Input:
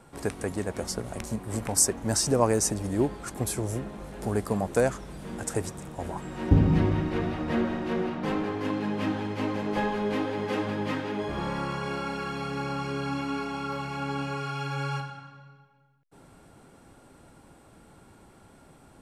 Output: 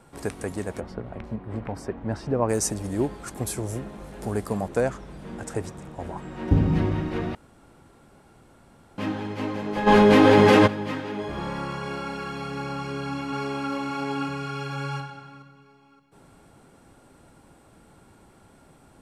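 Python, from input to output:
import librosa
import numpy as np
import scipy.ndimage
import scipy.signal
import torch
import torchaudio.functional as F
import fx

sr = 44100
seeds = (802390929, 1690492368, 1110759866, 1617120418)

y = fx.air_absorb(x, sr, metres=410.0, at=(0.79, 2.48), fade=0.02)
y = fx.lowpass(y, sr, hz=3800.0, slope=6, at=(4.68, 6.48))
y = fx.env_flatten(y, sr, amount_pct=100, at=(9.86, 10.66), fade=0.02)
y = fx.echo_throw(y, sr, start_s=12.75, length_s=0.96, ms=570, feedback_pct=40, wet_db=-1.5)
y = fx.edit(y, sr, fx.room_tone_fill(start_s=7.35, length_s=1.63), tone=tone)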